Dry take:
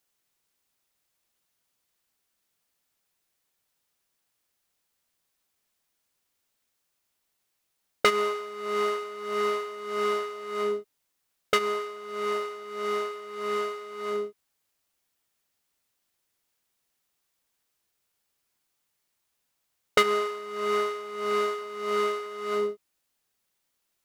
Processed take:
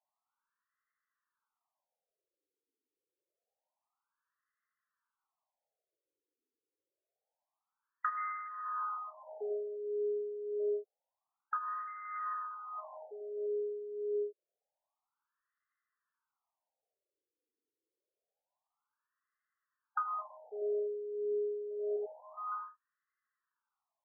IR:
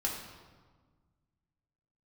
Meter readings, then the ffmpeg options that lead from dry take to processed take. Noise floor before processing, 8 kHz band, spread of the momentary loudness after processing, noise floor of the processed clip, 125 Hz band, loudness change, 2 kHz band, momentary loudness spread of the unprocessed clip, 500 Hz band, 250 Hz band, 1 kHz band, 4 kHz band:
-78 dBFS, under -35 dB, 9 LU, under -85 dBFS, no reading, -9.5 dB, -16.5 dB, 9 LU, -8.0 dB, under -10 dB, -9.0 dB, under -40 dB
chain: -af "acompressor=threshold=0.0251:ratio=2,afftfilt=real='re*between(b*sr/1024,360*pow(1500/360,0.5+0.5*sin(2*PI*0.27*pts/sr))/1.41,360*pow(1500/360,0.5+0.5*sin(2*PI*0.27*pts/sr))*1.41)':imag='im*between(b*sr/1024,360*pow(1500/360,0.5+0.5*sin(2*PI*0.27*pts/sr))/1.41,360*pow(1500/360,0.5+0.5*sin(2*PI*0.27*pts/sr))*1.41)':win_size=1024:overlap=0.75"

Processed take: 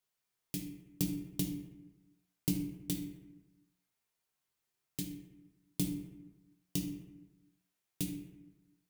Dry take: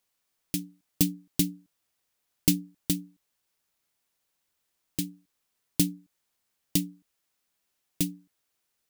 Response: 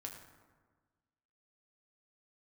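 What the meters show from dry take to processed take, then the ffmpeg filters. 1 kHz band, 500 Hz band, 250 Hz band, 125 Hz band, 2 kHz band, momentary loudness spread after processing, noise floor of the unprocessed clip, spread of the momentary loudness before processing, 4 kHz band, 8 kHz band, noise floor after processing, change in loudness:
no reading, -6.0 dB, -7.0 dB, -6.0 dB, -9.5 dB, 18 LU, -79 dBFS, 10 LU, -10.5 dB, -11.0 dB, under -85 dBFS, -9.5 dB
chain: -filter_complex "[0:a]acrossover=split=390[s0][s1];[s1]acompressor=threshold=0.0501:ratio=6[s2];[s0][s2]amix=inputs=2:normalize=0[s3];[1:a]atrim=start_sample=2205,asetrate=61740,aresample=44100[s4];[s3][s4]afir=irnorm=-1:irlink=0"

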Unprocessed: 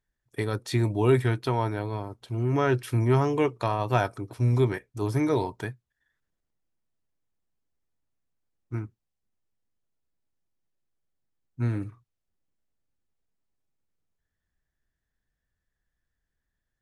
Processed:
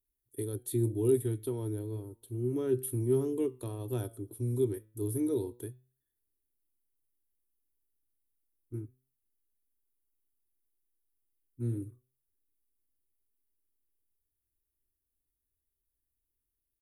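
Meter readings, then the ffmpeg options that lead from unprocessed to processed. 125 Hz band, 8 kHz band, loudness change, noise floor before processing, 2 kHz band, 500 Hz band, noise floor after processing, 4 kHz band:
-9.0 dB, +3.5 dB, -7.0 dB, -84 dBFS, under -20 dB, -5.0 dB, under -85 dBFS, under -15 dB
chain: -af "firequalizer=gain_entry='entry(110,0);entry(160,-18);entry(250,1);entry(380,4);entry(680,-17);entry(2200,-20);entry(3500,-8);entry(5000,-19);entry(10000,11)':delay=0.05:min_phase=1,flanger=delay=7.5:depth=1.8:regen=88:speed=0.32:shape=sinusoidal,highshelf=f=5400:g=6,volume=0.794"

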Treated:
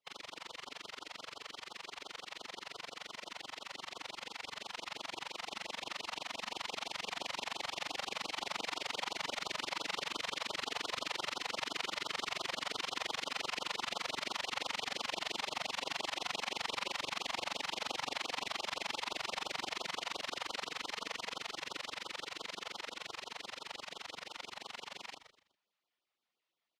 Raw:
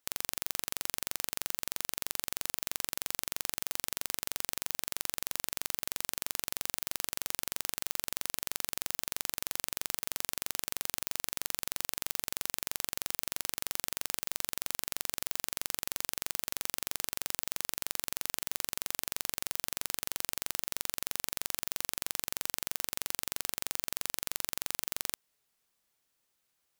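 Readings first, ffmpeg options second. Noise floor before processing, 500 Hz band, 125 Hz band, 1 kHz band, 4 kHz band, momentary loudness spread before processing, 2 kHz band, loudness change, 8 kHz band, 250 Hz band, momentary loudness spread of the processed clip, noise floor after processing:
-79 dBFS, +2.5 dB, -7.5 dB, +4.5 dB, +0.5 dB, 0 LU, +1.5 dB, -5.5 dB, -13.0 dB, -1.0 dB, 9 LU, -84 dBFS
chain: -filter_complex "[0:a]afftfilt=real='real(if(lt(b,960),b+48*(1-2*mod(floor(b/48),2)),b),0)':imag='imag(if(lt(b,960),b+48*(1-2*mod(floor(b/48),2)),b),0)':win_size=2048:overlap=0.75,lowpass=6600,acrossover=split=240 4500:gain=0.0794 1 0.126[s0][s1][s2];[s0][s1][s2]amix=inputs=3:normalize=0,asplit=2[s3][s4];[s4]aecho=0:1:121:0.0891[s5];[s3][s5]amix=inputs=2:normalize=0,dynaudnorm=f=590:g=21:m=2.82,bandreject=f=1600:w=8.3,asplit=2[s6][s7];[s7]asplit=3[s8][s9][s10];[s8]adelay=124,afreqshift=-49,volume=0.237[s11];[s9]adelay=248,afreqshift=-98,volume=0.0785[s12];[s10]adelay=372,afreqshift=-147,volume=0.0257[s13];[s11][s12][s13]amix=inputs=3:normalize=0[s14];[s6][s14]amix=inputs=2:normalize=0,afftfilt=real='hypot(re,im)*cos(2*PI*random(0))':imag='hypot(re,im)*sin(2*PI*random(1))':win_size=512:overlap=0.75,asplit=2[s15][s16];[s16]adelay=33,volume=0.422[s17];[s15][s17]amix=inputs=2:normalize=0,adynamicequalizer=threshold=0.00141:dfrequency=870:dqfactor=2.5:tfrequency=870:tqfactor=2.5:attack=5:release=100:ratio=0.375:range=1.5:mode=boostabove:tftype=bell,afftfilt=real='re*(1-between(b*sr/1024,290*pow(2100/290,0.5+0.5*sin(2*PI*5.8*pts/sr))/1.41,290*pow(2100/290,0.5+0.5*sin(2*PI*5.8*pts/sr))*1.41))':imag='im*(1-between(b*sr/1024,290*pow(2100/290,0.5+0.5*sin(2*PI*5.8*pts/sr))/1.41,290*pow(2100/290,0.5+0.5*sin(2*PI*5.8*pts/sr))*1.41))':win_size=1024:overlap=0.75,volume=1.33"

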